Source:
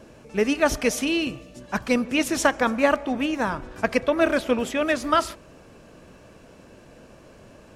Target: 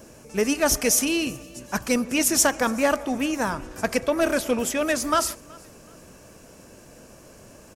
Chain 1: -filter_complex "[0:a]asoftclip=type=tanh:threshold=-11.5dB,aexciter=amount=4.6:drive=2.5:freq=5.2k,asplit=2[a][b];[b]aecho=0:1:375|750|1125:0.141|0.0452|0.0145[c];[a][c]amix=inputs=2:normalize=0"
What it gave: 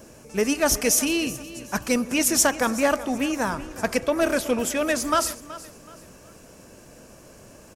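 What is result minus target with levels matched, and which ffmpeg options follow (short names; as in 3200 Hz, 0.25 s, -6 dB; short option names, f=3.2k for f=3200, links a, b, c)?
echo-to-direct +8.5 dB
-filter_complex "[0:a]asoftclip=type=tanh:threshold=-11.5dB,aexciter=amount=4.6:drive=2.5:freq=5.2k,asplit=2[a][b];[b]aecho=0:1:375|750:0.0531|0.017[c];[a][c]amix=inputs=2:normalize=0"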